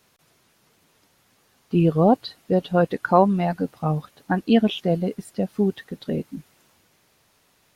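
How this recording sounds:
background noise floor −63 dBFS
spectral slope −6.5 dB per octave

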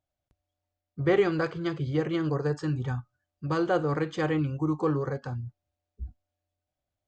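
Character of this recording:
background noise floor −87 dBFS
spectral slope −5.5 dB per octave

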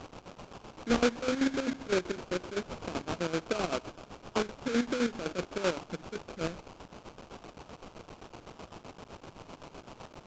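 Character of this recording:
a quantiser's noise floor 8 bits, dither triangular
chopped level 7.8 Hz, depth 65%, duty 50%
aliases and images of a low sample rate 1,900 Hz, jitter 20%
Ogg Vorbis

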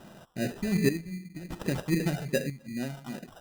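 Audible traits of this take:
phaser sweep stages 2, 2.6 Hz, lowest notch 280–1,500 Hz
chopped level 0.62 Hz, depth 65%, duty 55%
aliases and images of a low sample rate 2,200 Hz, jitter 0%

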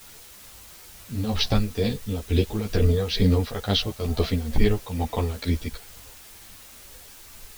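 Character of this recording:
tremolo triangle 2.2 Hz, depth 80%
a quantiser's noise floor 8 bits, dither triangular
a shimmering, thickened sound

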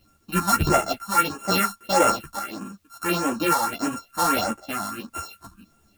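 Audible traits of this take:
a buzz of ramps at a fixed pitch in blocks of 32 samples
phaser sweep stages 4, 1.6 Hz, lowest notch 400–4,300 Hz
a quantiser's noise floor 12 bits, dither triangular
a shimmering, thickened sound

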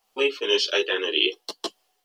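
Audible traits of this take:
a quantiser's noise floor 12 bits, dither none
tremolo triangle 1.8 Hz, depth 55%
a shimmering, thickened sound

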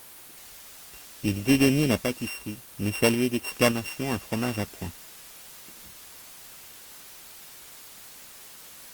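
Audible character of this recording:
a buzz of ramps at a fixed pitch in blocks of 16 samples
sample-and-hold tremolo
a quantiser's noise floor 8 bits, dither triangular
Opus

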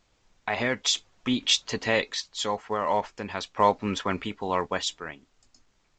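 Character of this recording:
sample-and-hold tremolo 1.4 Hz, depth 55%
A-law companding

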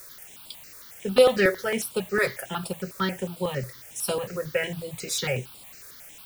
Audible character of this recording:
a quantiser's noise floor 8 bits, dither triangular
notches that jump at a steady rate 11 Hz 810–6,100 Hz

